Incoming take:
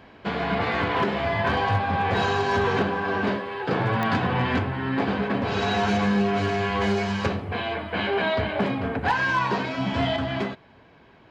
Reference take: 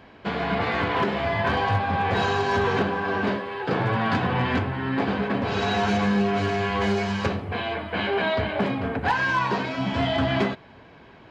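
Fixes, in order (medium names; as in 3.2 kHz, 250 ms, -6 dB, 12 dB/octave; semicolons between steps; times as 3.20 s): de-click; trim 0 dB, from 10.16 s +4.5 dB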